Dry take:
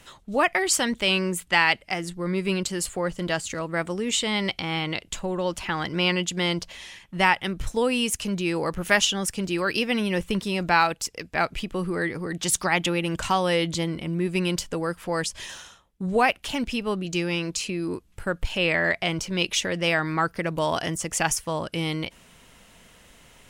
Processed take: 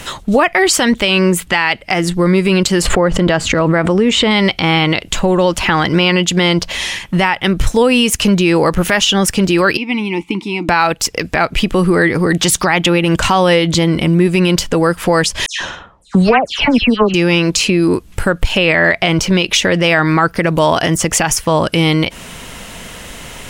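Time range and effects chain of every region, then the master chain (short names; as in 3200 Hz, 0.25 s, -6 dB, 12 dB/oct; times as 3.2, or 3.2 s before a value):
2.82–4.31 LPF 1800 Hz 6 dB/oct + backwards sustainer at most 39 dB/s
9.77–10.69 vowel filter u + high shelf 3700 Hz +10 dB
15.46–17.14 transient shaper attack +7 dB, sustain -8 dB + air absorption 99 m + dispersion lows, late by 0.144 s, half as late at 2600 Hz
whole clip: dynamic EQ 9100 Hz, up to -6 dB, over -43 dBFS, Q 0.7; compressor 2:1, threshold -34 dBFS; maximiser +22.5 dB; gain -1 dB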